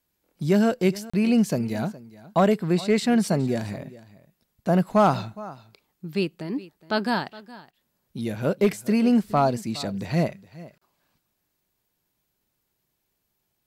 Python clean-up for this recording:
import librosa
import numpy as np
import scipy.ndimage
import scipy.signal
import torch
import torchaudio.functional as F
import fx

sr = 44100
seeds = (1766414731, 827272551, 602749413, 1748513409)

y = fx.fix_declip(x, sr, threshold_db=-11.5)
y = fx.fix_interpolate(y, sr, at_s=(1.1, 10.78), length_ms=35.0)
y = fx.fix_echo_inverse(y, sr, delay_ms=416, level_db=-19.0)